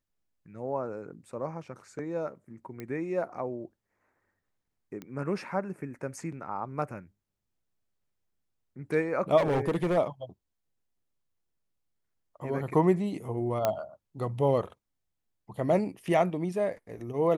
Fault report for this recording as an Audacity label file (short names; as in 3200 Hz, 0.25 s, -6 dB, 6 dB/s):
2.800000	2.800000	pop -25 dBFS
5.020000	5.020000	pop -26 dBFS
9.370000	9.980000	clipped -22.5 dBFS
13.650000	13.650000	pop -12 dBFS